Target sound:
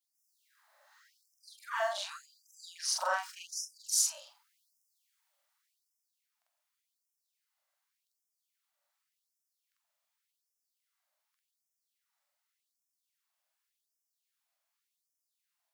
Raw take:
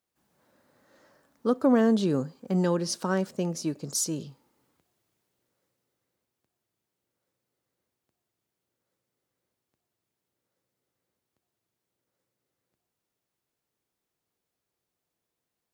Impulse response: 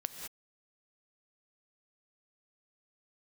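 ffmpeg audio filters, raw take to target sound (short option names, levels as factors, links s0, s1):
-af "afftfilt=real='re':imag='-im':win_size=4096:overlap=0.75,afftfilt=real='re*gte(b*sr/1024,520*pow(5100/520,0.5+0.5*sin(2*PI*0.87*pts/sr)))':imag='im*gte(b*sr/1024,520*pow(5100/520,0.5+0.5*sin(2*PI*0.87*pts/sr)))':win_size=1024:overlap=0.75,volume=1.88"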